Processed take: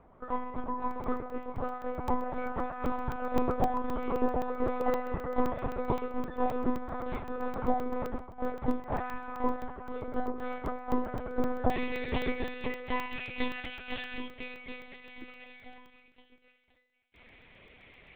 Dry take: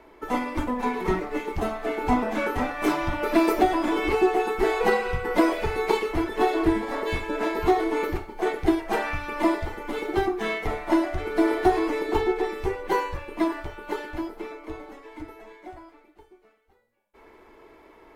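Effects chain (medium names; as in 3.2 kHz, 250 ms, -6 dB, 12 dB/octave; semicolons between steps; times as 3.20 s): monotone LPC vocoder at 8 kHz 250 Hz; resonant high shelf 1.7 kHz -9.5 dB, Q 1.5, from 11.70 s +7 dB, from 13.11 s +13 dB; crackling interface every 0.13 s, samples 64, zero, from 0.91 s; trim -7 dB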